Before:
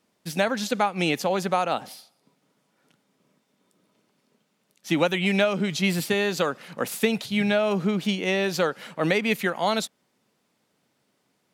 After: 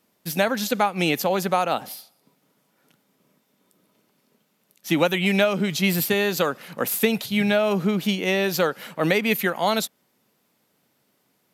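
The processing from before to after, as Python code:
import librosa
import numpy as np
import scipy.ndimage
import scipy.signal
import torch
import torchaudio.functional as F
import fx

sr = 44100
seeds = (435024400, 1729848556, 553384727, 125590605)

y = fx.peak_eq(x, sr, hz=13000.0, db=14.0, octaves=0.34)
y = y * librosa.db_to_amplitude(2.0)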